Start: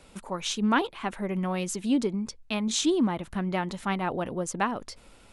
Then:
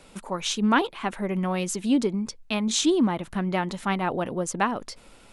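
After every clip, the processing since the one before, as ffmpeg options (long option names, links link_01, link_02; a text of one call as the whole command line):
ffmpeg -i in.wav -af "equalizer=frequency=61:width_type=o:width=0.94:gain=-8,volume=3dB" out.wav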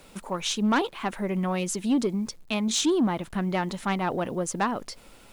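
ffmpeg -i in.wav -af "acrusher=bits=9:mix=0:aa=0.000001,asoftclip=type=tanh:threshold=-16dB" out.wav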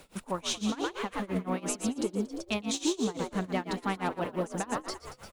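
ffmpeg -i in.wav -filter_complex "[0:a]acompressor=threshold=-26dB:ratio=6,asplit=2[link_01][link_02];[link_02]asplit=8[link_03][link_04][link_05][link_06][link_07][link_08][link_09][link_10];[link_03]adelay=116,afreqshift=66,volume=-5dB[link_11];[link_04]adelay=232,afreqshift=132,volume=-9.7dB[link_12];[link_05]adelay=348,afreqshift=198,volume=-14.5dB[link_13];[link_06]adelay=464,afreqshift=264,volume=-19.2dB[link_14];[link_07]adelay=580,afreqshift=330,volume=-23.9dB[link_15];[link_08]adelay=696,afreqshift=396,volume=-28.7dB[link_16];[link_09]adelay=812,afreqshift=462,volume=-33.4dB[link_17];[link_10]adelay=928,afreqshift=528,volume=-38.1dB[link_18];[link_11][link_12][link_13][link_14][link_15][link_16][link_17][link_18]amix=inputs=8:normalize=0[link_19];[link_01][link_19]amix=inputs=2:normalize=0,tremolo=f=5.9:d=0.93" out.wav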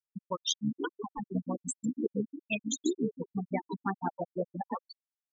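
ffmpeg -i in.wav -af "tremolo=f=71:d=0.75,tiltshelf=frequency=1400:gain=-4,afftfilt=real='re*gte(hypot(re,im),0.0631)':imag='im*gte(hypot(re,im),0.0631)':win_size=1024:overlap=0.75,volume=6.5dB" out.wav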